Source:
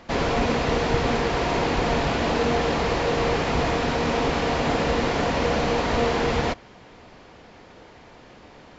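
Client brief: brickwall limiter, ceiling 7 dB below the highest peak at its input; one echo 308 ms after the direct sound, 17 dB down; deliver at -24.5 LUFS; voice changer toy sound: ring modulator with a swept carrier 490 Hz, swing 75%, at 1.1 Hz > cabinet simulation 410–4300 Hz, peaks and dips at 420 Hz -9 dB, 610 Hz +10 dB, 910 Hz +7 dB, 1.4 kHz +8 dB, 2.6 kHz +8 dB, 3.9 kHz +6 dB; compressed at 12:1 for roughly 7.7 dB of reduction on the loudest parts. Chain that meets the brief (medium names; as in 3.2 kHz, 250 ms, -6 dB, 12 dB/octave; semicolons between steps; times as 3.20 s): compression 12:1, threshold -24 dBFS; peak limiter -22 dBFS; delay 308 ms -17 dB; ring modulator with a swept carrier 490 Hz, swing 75%, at 1.1 Hz; cabinet simulation 410–4300 Hz, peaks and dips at 420 Hz -9 dB, 610 Hz +10 dB, 910 Hz +7 dB, 1.4 kHz +8 dB, 2.6 kHz +8 dB, 3.9 kHz +6 dB; trim +4.5 dB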